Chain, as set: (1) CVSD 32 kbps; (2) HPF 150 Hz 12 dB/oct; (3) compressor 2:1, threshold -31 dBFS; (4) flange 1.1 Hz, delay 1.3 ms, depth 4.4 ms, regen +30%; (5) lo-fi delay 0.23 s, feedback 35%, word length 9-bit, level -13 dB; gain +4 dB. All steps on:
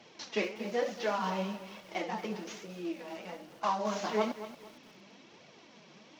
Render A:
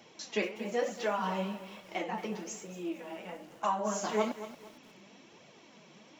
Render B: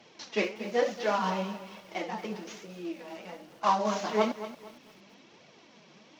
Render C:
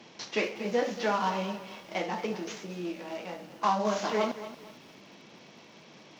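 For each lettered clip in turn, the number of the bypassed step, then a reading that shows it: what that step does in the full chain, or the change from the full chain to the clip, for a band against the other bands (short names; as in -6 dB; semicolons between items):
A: 1, 8 kHz band +6.0 dB; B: 3, momentary loudness spread change -5 LU; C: 4, momentary loudness spread change +2 LU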